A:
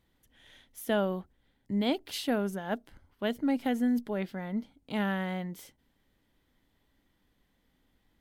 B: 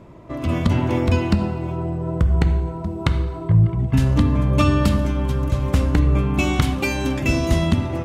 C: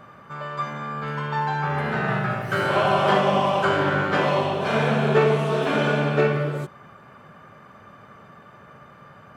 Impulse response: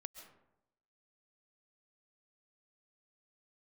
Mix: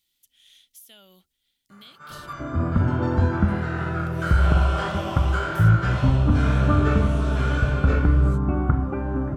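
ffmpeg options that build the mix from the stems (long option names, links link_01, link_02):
-filter_complex "[0:a]aexciter=amount=12:drive=6.7:freq=2300,acompressor=threshold=-30dB:ratio=5,volume=-17.5dB,asplit=3[link_01][link_02][link_03];[link_01]atrim=end=2.33,asetpts=PTS-STARTPTS,afade=type=out:start_time=2.326:duration=0.004:curve=hsin[link_04];[link_02]atrim=start=2.33:end=3.99,asetpts=PTS-STARTPTS,volume=0[link_05];[link_03]atrim=start=3.99,asetpts=PTS-STARTPTS,afade=type=in:duration=0.004:curve=hsin[link_06];[link_04][link_05][link_06]concat=n=3:v=0:a=1[link_07];[1:a]lowpass=frequency=1300:width=0.5412,lowpass=frequency=1300:width=1.3066,lowshelf=frequency=140:gain=5.5,adelay=2100,volume=-5dB[link_08];[2:a]equalizer=frequency=7600:width_type=o:width=1.9:gain=11,flanger=delay=19:depth=5.7:speed=1.8,adelay=1700,volume=-9dB[link_09];[link_07][link_08][link_09]amix=inputs=3:normalize=0,equalizer=frequency=1400:width_type=o:width=0.25:gain=11.5"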